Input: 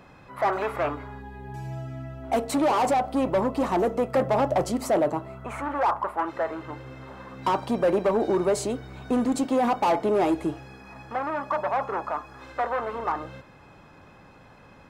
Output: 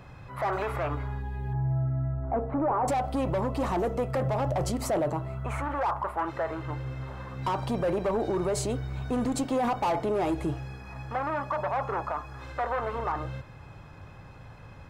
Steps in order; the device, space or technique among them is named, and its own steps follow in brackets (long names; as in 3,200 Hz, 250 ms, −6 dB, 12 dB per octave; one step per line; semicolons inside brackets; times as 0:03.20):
car stereo with a boomy subwoofer (low shelf with overshoot 160 Hz +8.5 dB, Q 1.5; brickwall limiter −21 dBFS, peak gain reduction 7.5 dB)
0:01.53–0:02.88: inverse Chebyshev low-pass filter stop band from 4,900 Hz, stop band 60 dB